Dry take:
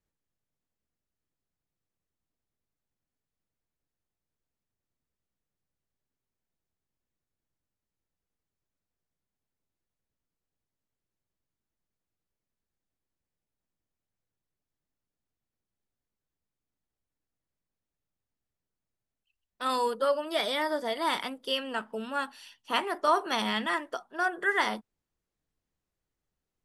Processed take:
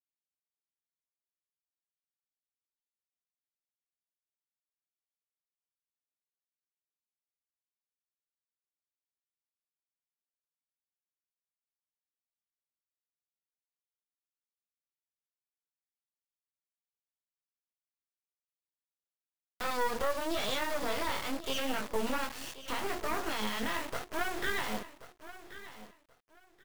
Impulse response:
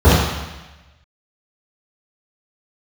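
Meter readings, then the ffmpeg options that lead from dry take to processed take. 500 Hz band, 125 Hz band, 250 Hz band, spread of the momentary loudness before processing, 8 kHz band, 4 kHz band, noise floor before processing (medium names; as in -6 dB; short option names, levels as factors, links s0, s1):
-5.0 dB, no reading, -2.5 dB, 8 LU, +3.5 dB, -4.5 dB, under -85 dBFS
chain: -af "aemphasis=mode=reproduction:type=50kf,bandreject=f=60:t=h:w=6,bandreject=f=120:t=h:w=6,bandreject=f=180:t=h:w=6,bandreject=f=240:t=h:w=6,bandreject=f=300:t=h:w=6,bandreject=f=360:t=h:w=6,bandreject=f=420:t=h:w=6,bandreject=f=480:t=h:w=6,adynamicequalizer=threshold=0.00891:dfrequency=470:dqfactor=1.1:tfrequency=470:tqfactor=1.1:attack=5:release=100:ratio=0.375:range=1.5:mode=cutabove:tftype=bell,acompressor=threshold=0.0251:ratio=6,alimiter=level_in=3.16:limit=0.0631:level=0:latency=1:release=60,volume=0.316,dynaudnorm=f=270:g=11:m=2.37,flanger=delay=19:depth=7.8:speed=0.78,acrusher=bits=5:dc=4:mix=0:aa=0.000001,aecho=1:1:1081|2162:0.178|0.0391,volume=2.51"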